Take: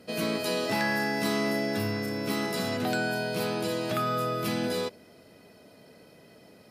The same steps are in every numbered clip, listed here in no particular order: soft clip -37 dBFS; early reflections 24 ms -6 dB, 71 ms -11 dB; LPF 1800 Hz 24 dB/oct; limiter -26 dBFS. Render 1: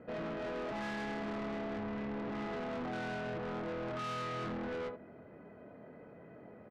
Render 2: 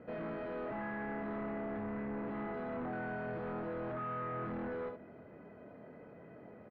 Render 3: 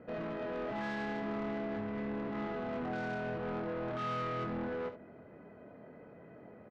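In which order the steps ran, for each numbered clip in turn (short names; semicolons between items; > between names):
LPF > limiter > early reflections > soft clip; limiter > early reflections > soft clip > LPF; limiter > LPF > soft clip > early reflections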